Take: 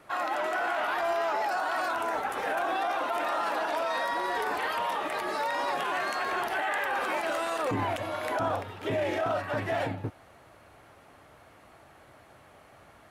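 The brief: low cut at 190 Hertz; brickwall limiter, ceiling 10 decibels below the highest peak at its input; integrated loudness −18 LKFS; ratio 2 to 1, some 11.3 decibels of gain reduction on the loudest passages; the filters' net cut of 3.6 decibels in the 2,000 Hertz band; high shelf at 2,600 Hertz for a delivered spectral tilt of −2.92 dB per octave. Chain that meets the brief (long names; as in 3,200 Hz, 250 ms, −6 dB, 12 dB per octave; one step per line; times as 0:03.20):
high-pass filter 190 Hz
parametric band 2,000 Hz −7.5 dB
high-shelf EQ 2,600 Hz +6 dB
downward compressor 2 to 1, threshold −48 dBFS
level +30 dB
brickwall limiter −9 dBFS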